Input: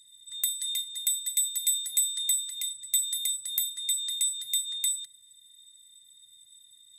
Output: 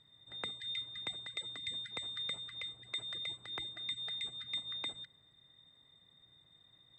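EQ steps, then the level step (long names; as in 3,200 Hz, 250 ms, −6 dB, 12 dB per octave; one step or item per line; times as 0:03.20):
low-pass filter 1,100 Hz 12 dB per octave
high-frequency loss of the air 130 metres
low-shelf EQ 95 Hz −10.5 dB
+17.5 dB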